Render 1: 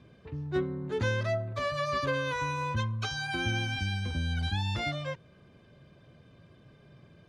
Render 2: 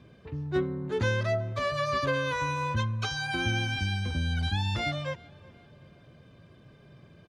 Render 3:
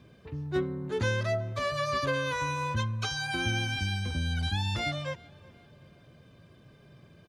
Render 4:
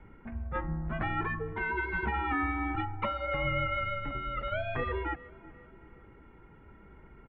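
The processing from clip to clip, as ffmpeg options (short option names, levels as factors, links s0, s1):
-filter_complex "[0:a]asplit=2[s0][s1];[s1]adelay=373,lowpass=f=4300:p=1,volume=0.0708,asplit=2[s2][s3];[s3]adelay=373,lowpass=f=4300:p=1,volume=0.49,asplit=2[s4][s5];[s5]adelay=373,lowpass=f=4300:p=1,volume=0.49[s6];[s0][s2][s4][s6]amix=inputs=4:normalize=0,volume=1.26"
-af "highshelf=f=6600:g=8,volume=0.841"
-af "highpass=f=170:t=q:w=0.5412,highpass=f=170:t=q:w=1.307,lowpass=f=2400:t=q:w=0.5176,lowpass=f=2400:t=q:w=0.7071,lowpass=f=2400:t=q:w=1.932,afreqshift=-210,afftfilt=real='re*lt(hypot(re,im),0.158)':imag='im*lt(hypot(re,im),0.158)':win_size=1024:overlap=0.75,volume=1.88"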